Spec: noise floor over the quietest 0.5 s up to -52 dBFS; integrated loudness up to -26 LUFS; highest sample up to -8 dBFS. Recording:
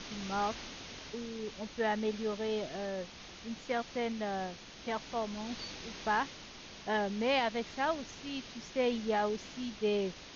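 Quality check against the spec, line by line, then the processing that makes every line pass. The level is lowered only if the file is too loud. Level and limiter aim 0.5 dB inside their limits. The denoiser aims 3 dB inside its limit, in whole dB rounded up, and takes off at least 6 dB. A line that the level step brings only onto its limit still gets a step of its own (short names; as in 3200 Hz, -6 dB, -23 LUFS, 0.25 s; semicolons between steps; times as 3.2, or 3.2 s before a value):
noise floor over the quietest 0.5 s -50 dBFS: fail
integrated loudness -35.5 LUFS: OK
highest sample -19.0 dBFS: OK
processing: denoiser 6 dB, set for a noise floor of -50 dBFS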